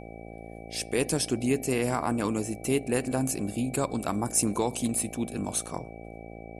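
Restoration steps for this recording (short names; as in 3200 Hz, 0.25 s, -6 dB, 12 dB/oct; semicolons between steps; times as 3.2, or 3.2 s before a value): de-hum 56.2 Hz, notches 14; notch 2300 Hz, Q 30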